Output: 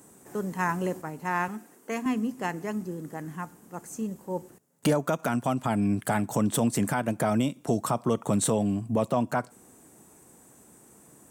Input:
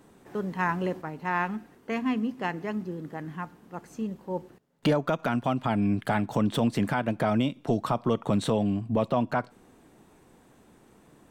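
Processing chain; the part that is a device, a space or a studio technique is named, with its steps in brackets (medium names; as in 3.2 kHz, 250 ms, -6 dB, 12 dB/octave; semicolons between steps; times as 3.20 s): budget condenser microphone (high-pass 67 Hz; resonant high shelf 5.5 kHz +12.5 dB, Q 1.5); 1.48–2.06 s: high-pass 230 Hz 12 dB/octave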